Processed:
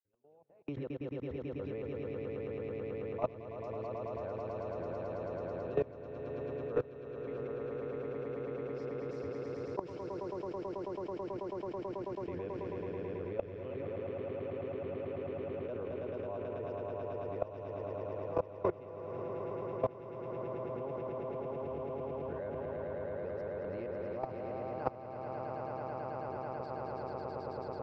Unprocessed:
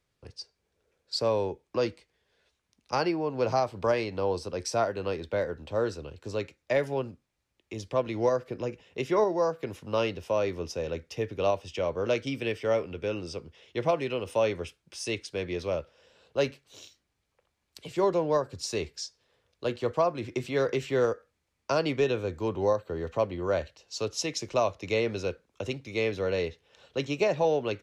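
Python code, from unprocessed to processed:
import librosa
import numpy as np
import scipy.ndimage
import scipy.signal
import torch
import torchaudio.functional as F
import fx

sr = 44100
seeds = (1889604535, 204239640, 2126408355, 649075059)

p1 = x[::-1].copy()
p2 = fx.step_gate(p1, sr, bpm=66, pattern='...x.x.x..x', floor_db=-60.0, edge_ms=4.5)
p3 = fx.vibrato(p2, sr, rate_hz=0.9, depth_cents=11.0)
p4 = p3 + fx.echo_swell(p3, sr, ms=109, loudest=8, wet_db=-5, dry=0)
p5 = fx.level_steps(p4, sr, step_db=22)
p6 = scipy.signal.sosfilt(scipy.signal.butter(2, 1300.0, 'lowpass', fs=sr, output='sos'), p5)
p7 = fx.band_squash(p6, sr, depth_pct=70)
y = F.gain(torch.from_numpy(p7), 4.5).numpy()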